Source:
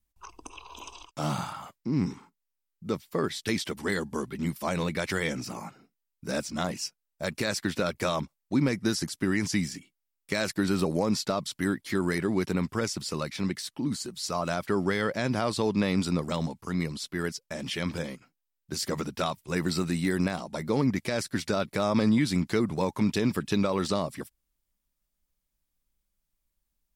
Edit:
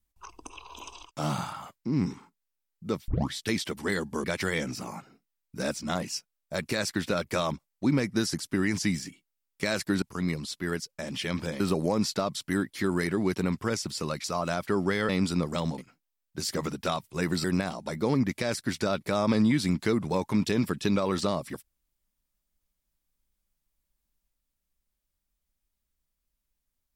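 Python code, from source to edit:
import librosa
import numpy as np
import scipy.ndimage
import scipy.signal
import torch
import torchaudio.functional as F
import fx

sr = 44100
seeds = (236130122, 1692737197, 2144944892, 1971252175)

y = fx.edit(x, sr, fx.tape_start(start_s=3.08, length_s=0.25),
    fx.cut(start_s=4.24, length_s=0.69),
    fx.cut(start_s=13.35, length_s=0.89),
    fx.cut(start_s=15.09, length_s=0.76),
    fx.move(start_s=16.54, length_s=1.58, to_s=10.71),
    fx.cut(start_s=19.78, length_s=0.33), tone=tone)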